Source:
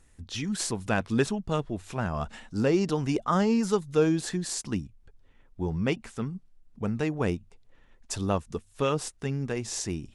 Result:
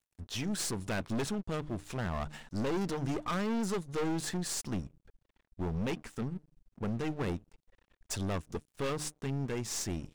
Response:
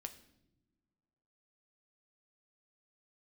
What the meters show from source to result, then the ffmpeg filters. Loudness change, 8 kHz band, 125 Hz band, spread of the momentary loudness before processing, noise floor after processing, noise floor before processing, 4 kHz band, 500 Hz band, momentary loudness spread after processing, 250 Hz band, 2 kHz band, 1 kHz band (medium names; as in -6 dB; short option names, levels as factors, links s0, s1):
-6.5 dB, -3.5 dB, -5.5 dB, 11 LU, under -85 dBFS, -59 dBFS, -4.0 dB, -8.5 dB, 7 LU, -7.0 dB, -6.0 dB, -7.0 dB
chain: -af "aeval=exprs='(tanh(35.5*val(0)+0.45)-tanh(0.45))/35.5':c=same,bandreject=f=151.2:t=h:w=4,bandreject=f=302.4:t=h:w=4,aeval=exprs='sgn(val(0))*max(abs(val(0))-0.00178,0)':c=same,volume=1.19"